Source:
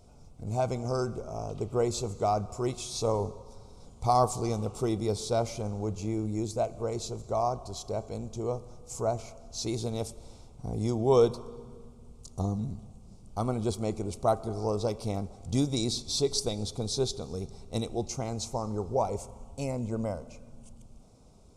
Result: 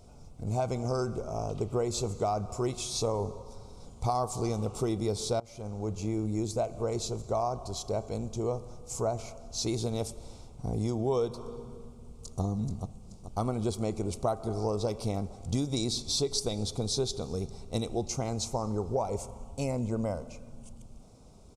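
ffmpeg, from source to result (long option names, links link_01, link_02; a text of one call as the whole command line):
ffmpeg -i in.wav -filter_complex "[0:a]asplit=2[link_01][link_02];[link_02]afade=type=in:start_time=11.79:duration=0.01,afade=type=out:start_time=12.42:duration=0.01,aecho=0:1:430|860|1290|1720|2150:0.398107|0.179148|0.0806167|0.0362775|0.0163249[link_03];[link_01][link_03]amix=inputs=2:normalize=0,asplit=2[link_04][link_05];[link_04]atrim=end=5.4,asetpts=PTS-STARTPTS,afade=type=out:start_time=5.396:duration=0.004:curve=hsin:silence=0.0668344[link_06];[link_05]atrim=start=5.4,asetpts=PTS-STARTPTS,afade=type=in:duration=1.03:curve=qsin:silence=0.0668344[link_07];[link_06][link_07]concat=n=2:v=0:a=1,acompressor=threshold=-28dB:ratio=6,volume=2.5dB" out.wav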